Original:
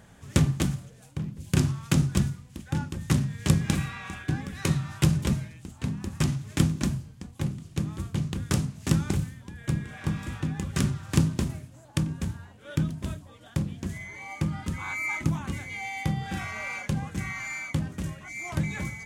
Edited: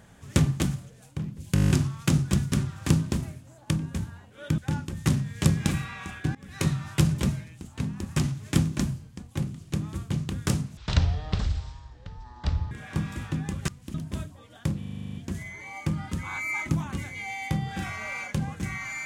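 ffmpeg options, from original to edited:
-filter_complex "[0:a]asplit=25[a][b][c][d][e][f][g][h][i][j][k][l][m][n][o][p][q][r][s][t][u][v][w][x][y];[a]atrim=end=1.562[z];[b]atrim=start=1.538:end=1.562[aa];[c]atrim=start=1.538:end=1.562[ab];[d]atrim=start=1.538:end=1.562[ac];[e]atrim=start=1.538:end=1.562[ad];[f]atrim=start=1.538:end=1.562[ae];[g]atrim=start=1.538:end=1.562[af];[h]atrim=start=1.538:end=1.562[ag];[i]atrim=start=1.538:end=2.362[ah];[j]atrim=start=10.788:end=12.852[ai];[k]atrim=start=2.618:end=4.39,asetpts=PTS-STARTPTS,afade=t=out:st=1.768:d=0.004:c=hsin:silence=0.0794328[aj];[l]atrim=start=4.39:end=8.814,asetpts=PTS-STARTPTS,afade=t=in:d=0.3:silence=0.0794328[ak];[m]atrim=start=8.81:end=9.82,asetpts=PTS-STARTPTS,asetrate=22932,aresample=44100[al];[n]atrim=start=9.816:end=10.792[am];[o]atrim=start=2.358:end=2.622[an];[p]atrim=start=12.848:end=13.732[ao];[q]atrim=start=13.688:end=13.732[ap];[r]atrim=start=13.688:end=13.732[aq];[s]atrim=start=13.688:end=13.732[ar];[t]atrim=start=13.688:end=13.732[as];[u]atrim=start=13.688:end=13.732[at];[v]atrim=start=13.688:end=13.732[au];[w]atrim=start=13.688:end=13.732[av];[x]atrim=start=13.688:end=13.732[aw];[y]atrim=start=13.688[ax];[z][aa]acrossfade=d=0.004:c1=hsin:c2=hsin[ay];[ay][ab]acrossfade=d=0.004:c1=hsin:c2=hsin[az];[az][ac]acrossfade=d=0.004:c1=hsin:c2=hsin[ba];[ba][ad]acrossfade=d=0.004:c1=hsin:c2=hsin[bb];[bb][ae]acrossfade=d=0.004:c1=hsin:c2=hsin[bc];[bc][af]acrossfade=d=0.004:c1=hsin:c2=hsin[bd];[bd][ag]acrossfade=d=0.004:c1=hsin:c2=hsin[be];[be][ah]acrossfade=d=0.004:c1=hsin:c2=hsin[bf];[bf][ai]acrossfade=d=0.004:c1=hsin:c2=hsin[bg];[aj][ak]concat=n=2:v=0:a=1[bh];[bg][bh]acrossfade=d=0.004:c1=hsin:c2=hsin[bi];[bi][al]acrossfade=d=0.004:c1=hsin:c2=hsin[bj];[bj][am]acrossfade=d=0.004:c1=hsin:c2=hsin[bk];[bk][an]acrossfade=d=0.004:c1=hsin:c2=hsin[bl];[bl][ao]acrossfade=d=0.004:c1=hsin:c2=hsin[bm];[bm][ap]acrossfade=d=0.004:c1=hsin:c2=hsin[bn];[bn][aq]acrossfade=d=0.004:c1=hsin:c2=hsin[bo];[bo][ar]acrossfade=d=0.004:c1=hsin:c2=hsin[bp];[bp][as]acrossfade=d=0.004:c1=hsin:c2=hsin[bq];[bq][at]acrossfade=d=0.004:c1=hsin:c2=hsin[br];[br][au]acrossfade=d=0.004:c1=hsin:c2=hsin[bs];[bs][av]acrossfade=d=0.004:c1=hsin:c2=hsin[bt];[bt][aw]acrossfade=d=0.004:c1=hsin:c2=hsin[bu];[bu][ax]acrossfade=d=0.004:c1=hsin:c2=hsin"

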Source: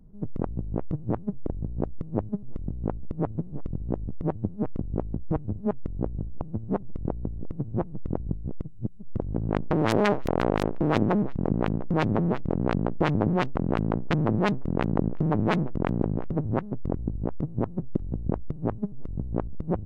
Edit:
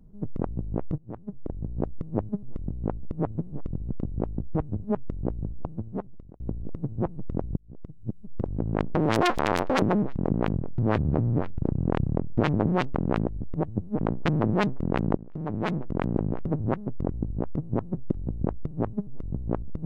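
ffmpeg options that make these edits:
-filter_complex "[0:a]asplit=12[a][b][c][d][e][f][g][h][i][j][k][l];[a]atrim=end=0.98,asetpts=PTS-STARTPTS,afade=t=out:st=0.976:d=0.004:c=hsin:silence=0.112202[m];[b]atrim=start=0.98:end=3.922,asetpts=PTS-STARTPTS,afade=t=in:d=0.78:silence=0.112202[n];[c]atrim=start=4.678:end=7.16,asetpts=PTS-STARTPTS,afade=t=out:st=1.712:d=0.77[o];[d]atrim=start=7.16:end=8.33,asetpts=PTS-STARTPTS,afade=t=in:d=0.004:c=hsin,afade=t=out:st=1.166:d=0.004:c=hsin[p];[e]atrim=start=8.33:end=9.974,asetpts=PTS-STARTPTS,afade=t=in:d=0.63[q];[f]atrim=start=9.97:end=11.02,asetpts=PTS-STARTPTS,asetrate=75852,aresample=44100[r];[g]atrim=start=11.016:end=11.744[s];[h]atrim=start=11.74:end=13.05,asetpts=PTS-STARTPTS,asetrate=30429,aresample=44100,atrim=end_sample=83726,asetpts=PTS-STARTPTS[t];[i]atrim=start=13.046:end=13.862[u];[j]atrim=start=3.918:end=4.682[v];[k]atrim=start=13.858:end=15.02,asetpts=PTS-STARTPTS,afade=t=out:st=1.158:d=0.004:c=hsin:silence=0.105925[w];[l]atrim=start=15.02,asetpts=PTS-STARTPTS,afade=t=in:d=1.26:c=qsin:silence=0.105925[x];[m][n]concat=n=2:v=0:a=1[y];[o][p][q]concat=n=3:v=0:a=1[z];[y][z]acrossfade=d=0.004:c1=hsin:c2=hsin[aa];[aa][r]acrossfade=d=0.004:c1=hsin:c2=hsin[ab];[ab][s]acrossfade=d=0.004:c1=hsin:c2=hsin[ac];[ac][t]acrossfade=d=0.004:c1=hsin:c2=hsin[ad];[ad][u]acrossfade=d=0.004:c1=hsin:c2=hsin[ae];[ae][v]acrossfade=d=0.004:c1=hsin:c2=hsin[af];[w][x]concat=n=2:v=0:a=1[ag];[af][ag]acrossfade=d=0.004:c1=hsin:c2=hsin"

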